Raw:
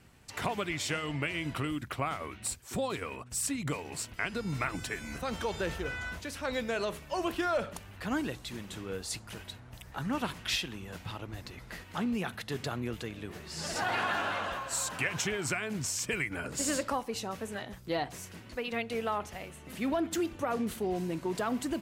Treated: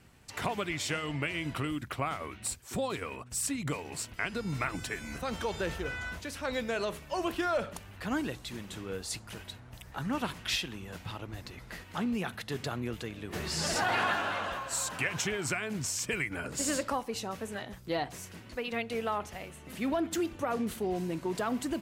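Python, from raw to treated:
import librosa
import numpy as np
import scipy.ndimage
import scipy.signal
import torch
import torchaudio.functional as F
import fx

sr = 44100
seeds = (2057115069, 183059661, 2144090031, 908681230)

y = fx.env_flatten(x, sr, amount_pct=50, at=(13.32, 14.13), fade=0.02)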